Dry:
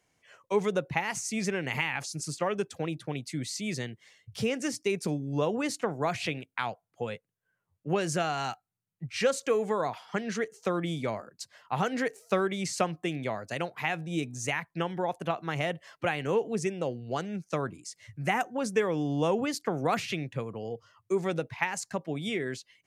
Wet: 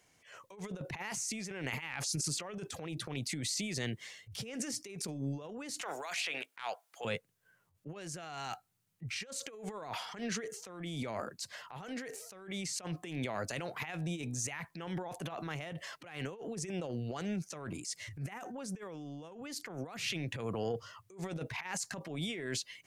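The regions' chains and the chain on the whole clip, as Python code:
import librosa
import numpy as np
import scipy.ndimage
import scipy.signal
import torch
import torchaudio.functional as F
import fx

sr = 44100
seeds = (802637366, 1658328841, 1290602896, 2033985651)

y = fx.chain(x, sr, fx.highpass(hz=760.0, slope=12),
    fx.band_squash(depth_pct=70), at=(5.81, 7.05))
y = fx.high_shelf(y, sr, hz=2000.0, db=4.0)
y = fx.over_compress(y, sr, threshold_db=-35.0, ratio=-0.5)
y = fx.transient(y, sr, attack_db=-9, sustain_db=5)
y = y * librosa.db_to_amplitude(-2.5)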